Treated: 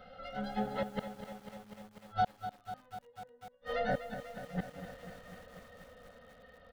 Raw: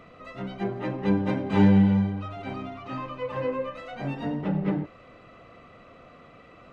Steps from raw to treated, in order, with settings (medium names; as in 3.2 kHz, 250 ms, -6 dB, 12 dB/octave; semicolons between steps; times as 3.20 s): Doppler pass-by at 2.73 s, 22 m/s, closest 4.7 m; comb 3.9 ms, depth 70%; in parallel at +2 dB: compression 12:1, threshold -44 dBFS, peak gain reduction 17 dB; on the sum: inverted gate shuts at -31 dBFS, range -38 dB; static phaser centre 1.6 kHz, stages 8; bit-crushed delay 247 ms, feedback 80%, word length 11-bit, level -10.5 dB; trim +13 dB